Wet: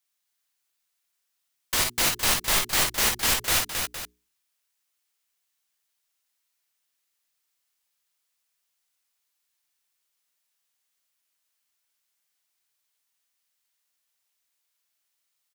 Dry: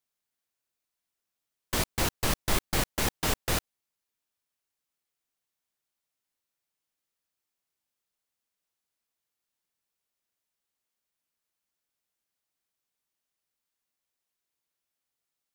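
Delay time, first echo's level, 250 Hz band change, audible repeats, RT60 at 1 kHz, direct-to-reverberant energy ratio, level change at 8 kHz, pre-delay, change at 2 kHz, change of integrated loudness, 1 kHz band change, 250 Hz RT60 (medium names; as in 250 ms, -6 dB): 50 ms, -6.0 dB, -3.5 dB, 3, no reverb, no reverb, +9.0 dB, no reverb, +7.0 dB, +6.5 dB, +4.0 dB, no reverb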